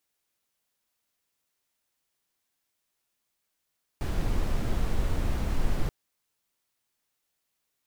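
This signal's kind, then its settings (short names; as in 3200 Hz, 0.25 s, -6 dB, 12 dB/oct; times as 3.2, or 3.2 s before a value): noise brown, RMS -25 dBFS 1.88 s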